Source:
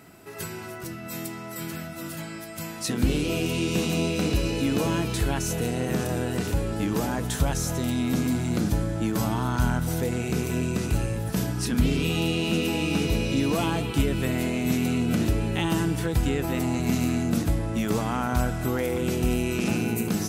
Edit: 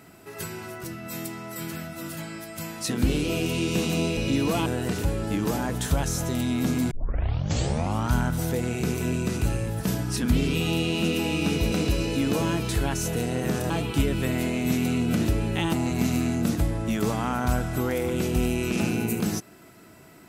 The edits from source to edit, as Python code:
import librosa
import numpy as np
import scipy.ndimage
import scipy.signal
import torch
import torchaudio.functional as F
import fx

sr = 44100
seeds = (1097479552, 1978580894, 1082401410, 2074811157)

y = fx.edit(x, sr, fx.swap(start_s=4.17, length_s=1.98, other_s=13.21, other_length_s=0.49),
    fx.tape_start(start_s=8.4, length_s=1.22),
    fx.cut(start_s=15.73, length_s=0.88), tone=tone)